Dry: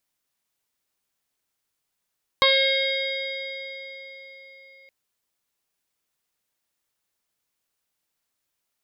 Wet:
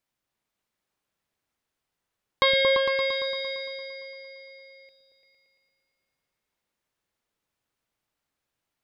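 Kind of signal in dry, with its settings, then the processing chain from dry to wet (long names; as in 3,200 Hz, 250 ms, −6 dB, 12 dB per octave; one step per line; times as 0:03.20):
harmonic partials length 2.47 s, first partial 539 Hz, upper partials 6/−8/0/−18.5/−2.5/1/−11/−10 dB, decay 4.09 s, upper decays 0.20/2.63/4.94/1.52/3.07/3.11/1.15/4.20 s, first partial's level −20.5 dB
high-shelf EQ 4,300 Hz −10 dB
on a send: echo whose low-pass opens from repeat to repeat 114 ms, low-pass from 200 Hz, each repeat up 2 octaves, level 0 dB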